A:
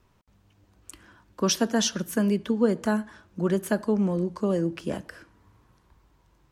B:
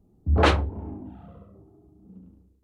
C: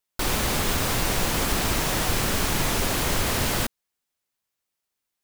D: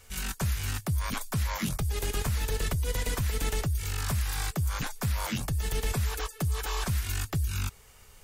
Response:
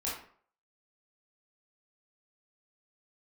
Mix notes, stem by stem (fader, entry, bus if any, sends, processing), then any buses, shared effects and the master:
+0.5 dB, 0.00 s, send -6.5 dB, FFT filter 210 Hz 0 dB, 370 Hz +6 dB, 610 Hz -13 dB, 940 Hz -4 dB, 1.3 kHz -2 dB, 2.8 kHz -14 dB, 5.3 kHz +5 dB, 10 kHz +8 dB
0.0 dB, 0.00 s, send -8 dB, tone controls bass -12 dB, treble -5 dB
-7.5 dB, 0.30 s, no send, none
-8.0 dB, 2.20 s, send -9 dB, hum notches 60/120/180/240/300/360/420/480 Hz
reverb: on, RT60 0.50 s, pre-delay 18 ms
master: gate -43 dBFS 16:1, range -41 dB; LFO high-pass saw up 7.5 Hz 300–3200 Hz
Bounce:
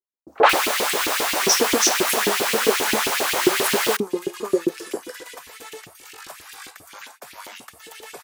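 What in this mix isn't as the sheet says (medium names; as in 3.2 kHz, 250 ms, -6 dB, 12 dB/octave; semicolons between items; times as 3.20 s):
stem C -7.5 dB -> +2.5 dB; stem D: missing hum notches 60/120/180/240/300/360/420/480 Hz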